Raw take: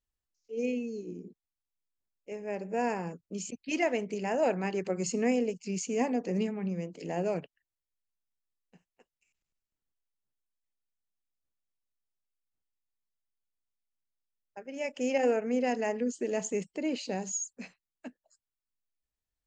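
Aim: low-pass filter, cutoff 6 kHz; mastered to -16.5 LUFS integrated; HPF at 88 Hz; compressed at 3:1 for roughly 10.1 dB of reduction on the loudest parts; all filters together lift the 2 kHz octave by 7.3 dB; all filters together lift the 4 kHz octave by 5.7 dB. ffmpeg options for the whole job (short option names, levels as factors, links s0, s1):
-af "highpass=88,lowpass=6000,equalizer=f=2000:t=o:g=7,equalizer=f=4000:t=o:g=6,acompressor=threshold=0.0178:ratio=3,volume=11.9"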